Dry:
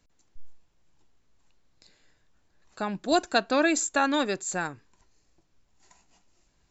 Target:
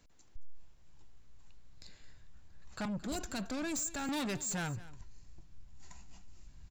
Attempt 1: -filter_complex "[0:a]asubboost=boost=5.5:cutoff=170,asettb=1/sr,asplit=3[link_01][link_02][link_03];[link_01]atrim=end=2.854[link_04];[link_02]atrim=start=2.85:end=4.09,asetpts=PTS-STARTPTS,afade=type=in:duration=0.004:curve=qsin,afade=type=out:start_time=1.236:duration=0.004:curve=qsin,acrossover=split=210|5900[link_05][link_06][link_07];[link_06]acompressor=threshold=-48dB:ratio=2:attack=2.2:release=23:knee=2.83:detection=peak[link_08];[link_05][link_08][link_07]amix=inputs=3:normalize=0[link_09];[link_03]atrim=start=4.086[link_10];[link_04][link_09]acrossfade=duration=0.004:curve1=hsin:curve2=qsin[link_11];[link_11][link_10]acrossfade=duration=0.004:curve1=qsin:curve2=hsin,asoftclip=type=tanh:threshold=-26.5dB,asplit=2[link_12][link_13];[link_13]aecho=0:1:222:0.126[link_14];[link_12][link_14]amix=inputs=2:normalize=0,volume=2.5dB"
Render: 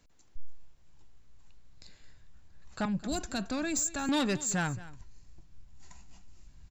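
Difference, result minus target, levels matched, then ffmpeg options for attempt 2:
soft clipping: distortion −7 dB
-filter_complex "[0:a]asubboost=boost=5.5:cutoff=170,asettb=1/sr,asplit=3[link_01][link_02][link_03];[link_01]atrim=end=2.854[link_04];[link_02]atrim=start=2.85:end=4.09,asetpts=PTS-STARTPTS,afade=type=in:duration=0.004:curve=qsin,afade=type=out:start_time=1.236:duration=0.004:curve=qsin,acrossover=split=210|5900[link_05][link_06][link_07];[link_06]acompressor=threshold=-48dB:ratio=2:attack=2.2:release=23:knee=2.83:detection=peak[link_08];[link_05][link_08][link_07]amix=inputs=3:normalize=0[link_09];[link_03]atrim=start=4.086[link_10];[link_04][link_09]acrossfade=duration=0.004:curve1=hsin:curve2=qsin[link_11];[link_11][link_10]acrossfade=duration=0.004:curve1=qsin:curve2=hsin,asoftclip=type=tanh:threshold=-36.5dB,asplit=2[link_12][link_13];[link_13]aecho=0:1:222:0.126[link_14];[link_12][link_14]amix=inputs=2:normalize=0,volume=2.5dB"

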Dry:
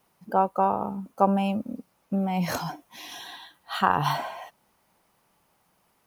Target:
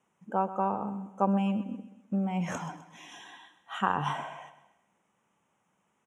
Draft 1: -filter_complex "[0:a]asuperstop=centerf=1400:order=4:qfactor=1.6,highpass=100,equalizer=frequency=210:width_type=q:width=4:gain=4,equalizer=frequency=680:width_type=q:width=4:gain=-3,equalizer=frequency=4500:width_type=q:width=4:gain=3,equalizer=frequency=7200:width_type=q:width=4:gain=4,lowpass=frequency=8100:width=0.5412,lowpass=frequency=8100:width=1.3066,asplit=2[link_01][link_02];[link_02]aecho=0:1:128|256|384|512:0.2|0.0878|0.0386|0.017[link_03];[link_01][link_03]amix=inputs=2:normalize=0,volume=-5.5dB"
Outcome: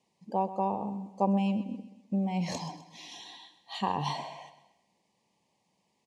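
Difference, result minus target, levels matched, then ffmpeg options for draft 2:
4,000 Hz band +5.0 dB
-filter_complex "[0:a]asuperstop=centerf=4500:order=4:qfactor=1.6,highpass=100,equalizer=frequency=210:width_type=q:width=4:gain=4,equalizer=frequency=680:width_type=q:width=4:gain=-3,equalizer=frequency=4500:width_type=q:width=4:gain=3,equalizer=frequency=7200:width_type=q:width=4:gain=4,lowpass=frequency=8100:width=0.5412,lowpass=frequency=8100:width=1.3066,asplit=2[link_01][link_02];[link_02]aecho=0:1:128|256|384|512:0.2|0.0878|0.0386|0.017[link_03];[link_01][link_03]amix=inputs=2:normalize=0,volume=-5.5dB"

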